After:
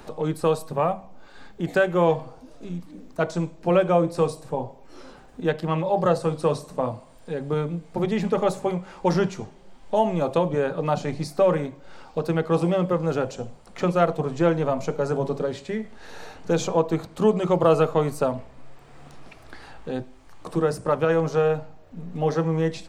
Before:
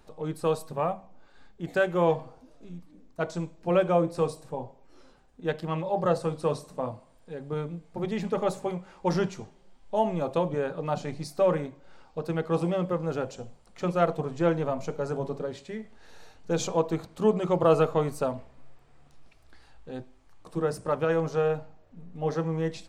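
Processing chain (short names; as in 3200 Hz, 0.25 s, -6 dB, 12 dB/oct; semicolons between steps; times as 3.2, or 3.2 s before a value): three-band squash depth 40%; gain +5 dB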